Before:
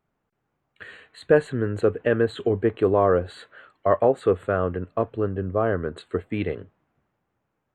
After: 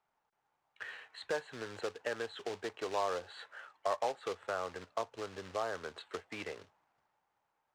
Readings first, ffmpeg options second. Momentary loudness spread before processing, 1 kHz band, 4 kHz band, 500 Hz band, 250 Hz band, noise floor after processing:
10 LU, −10.0 dB, can't be measured, −17.0 dB, −22.5 dB, −83 dBFS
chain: -filter_complex "[0:a]equalizer=frequency=870:width=4.3:gain=8.5,acrossover=split=140[link_01][link_02];[link_01]alimiter=level_in=9.5dB:limit=-24dB:level=0:latency=1:release=220,volume=-9.5dB[link_03];[link_03][link_02]amix=inputs=2:normalize=0,acompressor=threshold=-32dB:ratio=2,acrusher=bits=3:mode=log:mix=0:aa=0.000001,acrossover=split=550 7400:gain=0.178 1 0.0631[link_04][link_05][link_06];[link_04][link_05][link_06]amix=inputs=3:normalize=0,volume=-3dB"

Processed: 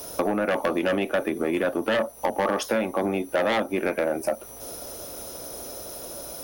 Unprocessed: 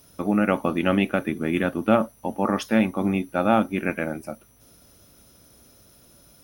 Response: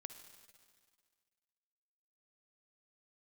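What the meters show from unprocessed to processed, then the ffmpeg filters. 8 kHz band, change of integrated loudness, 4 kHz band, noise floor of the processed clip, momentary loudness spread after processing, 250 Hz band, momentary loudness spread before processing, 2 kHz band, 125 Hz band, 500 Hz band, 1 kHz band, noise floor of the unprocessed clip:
+9.5 dB, −3.0 dB, +3.0 dB, −42 dBFS, 11 LU, −6.0 dB, 9 LU, 0.0 dB, −9.0 dB, +1.5 dB, −1.5 dB, −55 dBFS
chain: -filter_complex "[0:a]lowshelf=frequency=65:gain=10.5,acrossover=split=430|800|2500[link_01][link_02][link_03][link_04];[link_02]aeval=exprs='0.178*sin(PI/2*3.55*val(0)/0.178)':channel_layout=same[link_05];[link_01][link_05][link_03][link_04]amix=inputs=4:normalize=0,acompressor=threshold=-29dB:ratio=12,bass=frequency=250:gain=-9,treble=frequency=4000:gain=6,aeval=exprs='0.141*(cos(1*acos(clip(val(0)/0.141,-1,1)))-cos(1*PI/2))+0.0224*(cos(5*acos(clip(val(0)/0.141,-1,1)))-cos(5*PI/2))':channel_layout=same,volume=6dB"

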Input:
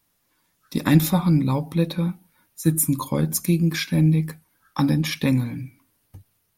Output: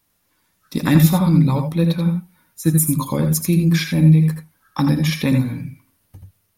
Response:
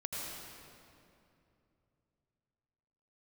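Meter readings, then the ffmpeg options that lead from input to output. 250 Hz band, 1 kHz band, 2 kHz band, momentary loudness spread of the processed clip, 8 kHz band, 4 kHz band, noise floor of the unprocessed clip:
+4.5 dB, +3.0 dB, +3.0 dB, 13 LU, +2.5 dB, +2.5 dB, −70 dBFS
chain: -filter_complex "[1:a]atrim=start_sample=2205,atrim=end_sample=3969[link_01];[0:a][link_01]afir=irnorm=-1:irlink=0,volume=5.5dB"

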